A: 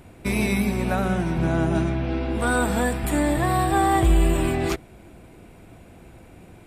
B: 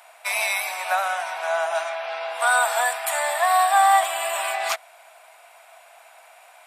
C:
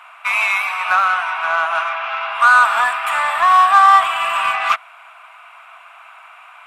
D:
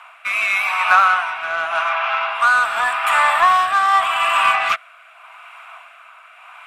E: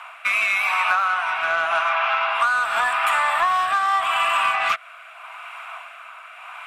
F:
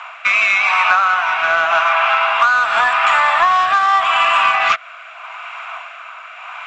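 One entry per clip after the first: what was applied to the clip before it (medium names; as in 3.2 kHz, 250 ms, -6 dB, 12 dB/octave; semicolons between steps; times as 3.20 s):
Chebyshev high-pass 650 Hz, order 5; trim +6.5 dB
FFT filter 230 Hz 0 dB, 350 Hz -21 dB, 840 Hz 0 dB, 1.2 kHz +15 dB, 1.8 kHz +2 dB, 2.7 kHz +8 dB, 4.4 kHz -8 dB, 14 kHz -14 dB; in parallel at -4 dB: saturation -17.5 dBFS, distortion -6 dB; on the sum: trim -1 dB
rotary cabinet horn 0.85 Hz; trim +3.5 dB
compression 6:1, threshold -21 dBFS, peak gain reduction 12.5 dB; trim +3.5 dB
trim +6.5 dB; µ-law 128 kbps 16 kHz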